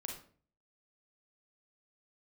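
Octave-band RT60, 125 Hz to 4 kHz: 0.65, 0.55, 0.50, 0.40, 0.40, 0.30 seconds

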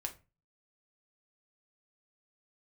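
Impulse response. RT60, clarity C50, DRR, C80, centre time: 0.30 s, 14.5 dB, 2.5 dB, 21.5 dB, 8 ms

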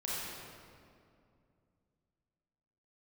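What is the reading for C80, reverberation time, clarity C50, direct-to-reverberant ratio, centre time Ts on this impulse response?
−2.0 dB, 2.4 s, −4.5 dB, −7.5 dB, 154 ms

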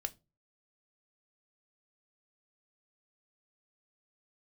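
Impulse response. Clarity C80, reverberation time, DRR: 31.0 dB, non-exponential decay, 9.5 dB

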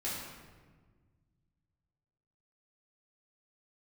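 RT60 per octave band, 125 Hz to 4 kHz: 2.8, 2.2, 1.6, 1.4, 1.2, 0.95 seconds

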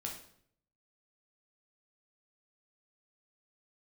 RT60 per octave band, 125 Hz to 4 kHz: 0.90, 0.75, 0.70, 0.60, 0.55, 0.50 seconds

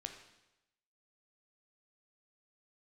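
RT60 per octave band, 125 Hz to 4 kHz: 0.95, 0.90, 0.95, 0.95, 0.90, 0.90 seconds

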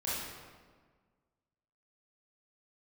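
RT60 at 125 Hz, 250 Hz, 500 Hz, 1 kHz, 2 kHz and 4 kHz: 1.8, 1.8, 1.6, 1.5, 1.3, 1.0 seconds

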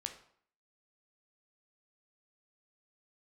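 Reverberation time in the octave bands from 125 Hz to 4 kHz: 0.55, 0.60, 0.55, 0.60, 0.55, 0.45 seconds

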